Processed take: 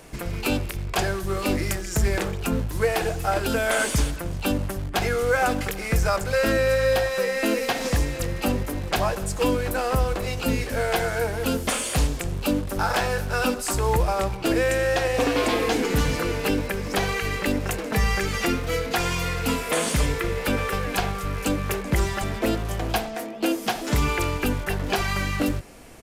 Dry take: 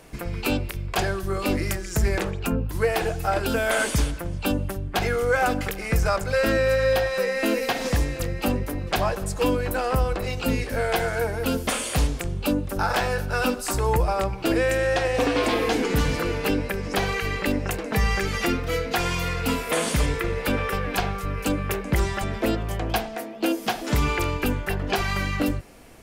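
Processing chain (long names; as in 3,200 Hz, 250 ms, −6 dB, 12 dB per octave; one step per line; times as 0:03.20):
parametric band 7,400 Hz +2.5 dB
in parallel at −10.5 dB: wrap-around overflow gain 28 dB
on the sum: downsampling to 32,000 Hz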